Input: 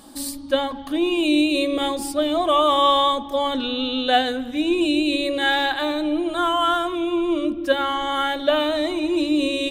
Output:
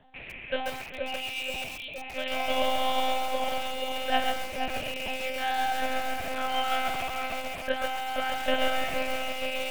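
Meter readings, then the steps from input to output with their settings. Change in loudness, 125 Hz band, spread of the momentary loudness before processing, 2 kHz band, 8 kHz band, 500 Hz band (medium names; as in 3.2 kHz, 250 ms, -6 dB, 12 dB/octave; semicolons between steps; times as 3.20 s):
-9.0 dB, no reading, 6 LU, -4.5 dB, -5.5 dB, -10.0 dB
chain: rattle on loud lows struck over -41 dBFS, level -19 dBFS; spectral selection erased 1.20–1.98 s, 240–2200 Hz; dynamic bell 140 Hz, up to -7 dB, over -38 dBFS, Q 0.72; static phaser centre 1.2 kHz, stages 6; feedback comb 99 Hz, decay 0.44 s, harmonics all, mix 60%; on a send: tape echo 475 ms, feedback 63%, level -3 dB, low-pass 1.1 kHz; on the sum: monotone LPC vocoder at 8 kHz 260 Hz; bit-crushed delay 136 ms, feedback 35%, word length 6-bit, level -3 dB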